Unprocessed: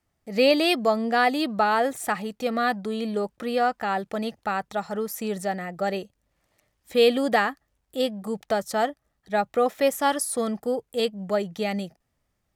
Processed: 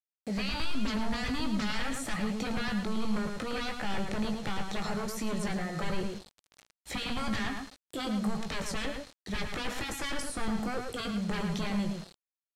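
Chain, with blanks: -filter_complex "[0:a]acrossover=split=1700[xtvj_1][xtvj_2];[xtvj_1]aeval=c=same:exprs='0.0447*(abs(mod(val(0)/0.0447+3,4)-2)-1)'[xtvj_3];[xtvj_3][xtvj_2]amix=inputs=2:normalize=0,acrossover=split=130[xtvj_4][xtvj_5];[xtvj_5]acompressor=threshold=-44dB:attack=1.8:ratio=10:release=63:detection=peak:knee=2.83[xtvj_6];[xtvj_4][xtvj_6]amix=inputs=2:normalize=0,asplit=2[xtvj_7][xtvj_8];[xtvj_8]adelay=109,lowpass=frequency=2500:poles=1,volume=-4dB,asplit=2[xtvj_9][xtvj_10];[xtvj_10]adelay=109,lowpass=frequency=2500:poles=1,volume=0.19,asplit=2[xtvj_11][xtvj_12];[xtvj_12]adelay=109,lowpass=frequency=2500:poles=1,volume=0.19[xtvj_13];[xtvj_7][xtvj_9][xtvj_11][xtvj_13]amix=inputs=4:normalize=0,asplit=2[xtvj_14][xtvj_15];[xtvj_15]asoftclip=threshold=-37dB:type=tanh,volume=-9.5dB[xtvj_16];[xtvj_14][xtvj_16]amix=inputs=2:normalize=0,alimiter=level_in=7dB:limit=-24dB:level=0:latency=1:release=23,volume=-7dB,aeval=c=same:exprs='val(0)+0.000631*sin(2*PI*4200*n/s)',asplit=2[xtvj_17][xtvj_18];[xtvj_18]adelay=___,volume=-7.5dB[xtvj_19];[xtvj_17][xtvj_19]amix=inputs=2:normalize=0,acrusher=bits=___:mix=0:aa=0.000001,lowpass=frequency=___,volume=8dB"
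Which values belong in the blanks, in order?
19, 8, 8000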